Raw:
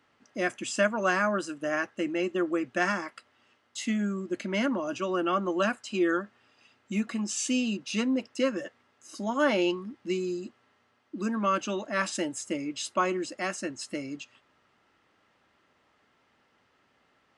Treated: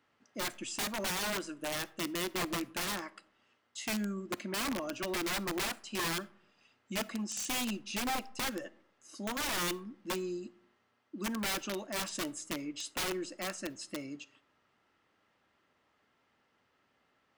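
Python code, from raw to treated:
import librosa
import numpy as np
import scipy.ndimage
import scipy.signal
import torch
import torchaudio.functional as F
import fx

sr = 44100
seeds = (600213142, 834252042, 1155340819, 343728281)

y = (np.mod(10.0 ** (23.0 / 20.0) * x + 1.0, 2.0) - 1.0) / 10.0 ** (23.0 / 20.0)
y = fx.rev_freeverb(y, sr, rt60_s=0.7, hf_ratio=0.4, predelay_ms=5, drr_db=20.0)
y = F.gain(torch.from_numpy(y), -6.0).numpy()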